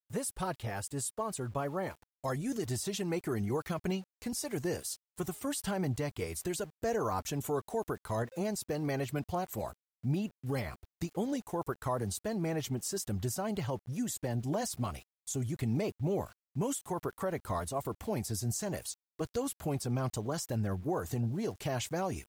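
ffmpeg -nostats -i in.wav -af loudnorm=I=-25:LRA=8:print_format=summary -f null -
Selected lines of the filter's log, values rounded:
Input Integrated:    -35.7 LUFS
Input True Peak:     -22.9 dBTP
Input LRA:             1.5 LU
Input Threshold:     -45.7 LUFS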